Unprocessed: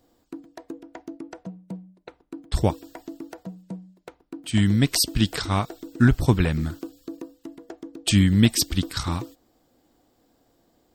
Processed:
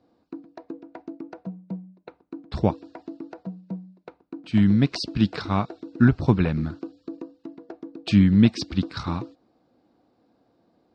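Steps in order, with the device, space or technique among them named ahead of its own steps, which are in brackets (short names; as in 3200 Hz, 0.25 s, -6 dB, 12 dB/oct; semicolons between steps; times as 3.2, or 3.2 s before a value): guitar cabinet (speaker cabinet 95–4200 Hz, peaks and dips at 200 Hz +4 dB, 1900 Hz -6 dB, 3200 Hz -10 dB)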